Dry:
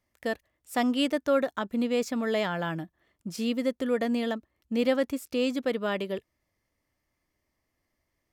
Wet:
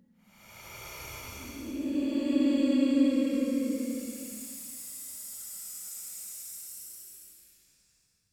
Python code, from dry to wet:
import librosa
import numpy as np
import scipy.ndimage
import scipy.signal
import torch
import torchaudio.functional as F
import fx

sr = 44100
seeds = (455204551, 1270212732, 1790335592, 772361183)

y = fx.hum_notches(x, sr, base_hz=50, count=4)
y = fx.paulstretch(y, sr, seeds[0], factor=38.0, window_s=0.05, from_s=5.07)
y = y * 10.0 ** (2.0 / 20.0)